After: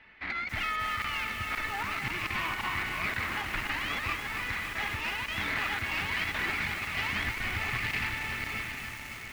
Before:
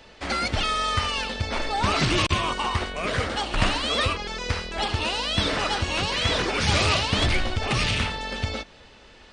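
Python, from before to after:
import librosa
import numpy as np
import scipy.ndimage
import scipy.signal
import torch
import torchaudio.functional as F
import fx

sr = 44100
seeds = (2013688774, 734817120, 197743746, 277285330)

p1 = fx.lowpass_res(x, sr, hz=2100.0, q=4.1)
p2 = fx.low_shelf(p1, sr, hz=130.0, db=-5.0)
p3 = p2 + fx.echo_diffused(p2, sr, ms=766, feedback_pct=45, wet_db=-10, dry=0)
p4 = fx.over_compress(p3, sr, threshold_db=-21.0, ratio=-0.5)
p5 = fx.tube_stage(p4, sr, drive_db=11.0, bias=0.6)
p6 = fx.peak_eq(p5, sr, hz=520.0, db=-11.5, octaves=0.81)
p7 = fx.buffer_crackle(p6, sr, first_s=0.49, period_s=0.53, block=1024, kind='zero')
p8 = fx.echo_crushed(p7, sr, ms=279, feedback_pct=80, bits=6, wet_db=-6.5)
y = F.gain(torch.from_numpy(p8), -7.0).numpy()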